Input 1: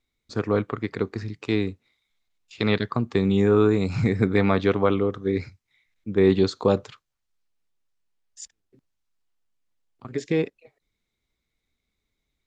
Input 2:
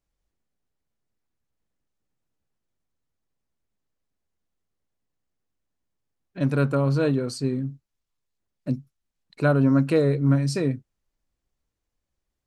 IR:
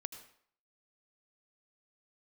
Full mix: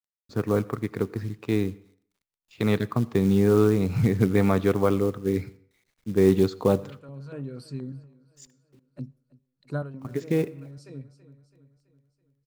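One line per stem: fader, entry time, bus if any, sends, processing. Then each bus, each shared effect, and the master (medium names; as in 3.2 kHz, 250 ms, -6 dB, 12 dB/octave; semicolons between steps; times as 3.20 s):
-3.5 dB, 0.00 s, send -7.5 dB, no echo send, treble shelf 2.3 kHz -9.5 dB; companded quantiser 6-bit
-10.5 dB, 0.30 s, send -21 dB, echo send -23.5 dB, step-sequenced notch 8.4 Hz 210–6600 Hz; auto duck -18 dB, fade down 0.25 s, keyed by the first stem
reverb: on, RT60 0.60 s, pre-delay 73 ms
echo: feedback delay 330 ms, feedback 51%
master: peaking EQ 140 Hz +3.5 dB 1 oct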